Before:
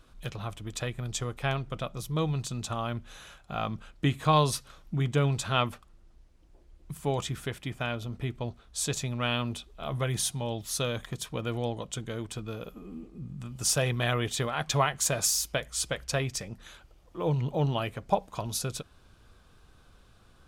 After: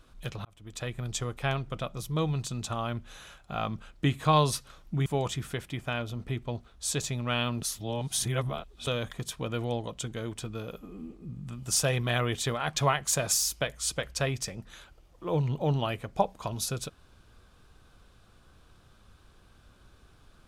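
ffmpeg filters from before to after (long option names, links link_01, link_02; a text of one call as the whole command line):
ffmpeg -i in.wav -filter_complex "[0:a]asplit=5[link_01][link_02][link_03][link_04][link_05];[link_01]atrim=end=0.45,asetpts=PTS-STARTPTS,afade=type=out:start_time=0.446:duration=0.004:curve=hsin[link_06];[link_02]atrim=start=0.45:end=5.062,asetpts=PTS-STARTPTS,afade=type=in:duration=0.51[link_07];[link_03]atrim=start=6.988:end=9.552[link_08];[link_04]atrim=start=9.548:end=10.802,asetpts=PTS-STARTPTS,areverse[link_09];[link_05]atrim=start=10.798[link_10];[link_06][link_07]concat=n=2:v=0:a=1[link_11];[link_11][link_08]acrossfade=duration=0.004:curve1=hsin:curve2=hsin[link_12];[link_12][link_09]acrossfade=duration=0.004:curve1=hsin:curve2=hsin[link_13];[link_13][link_10]acrossfade=duration=0.004:curve1=hsin:curve2=hsin" out.wav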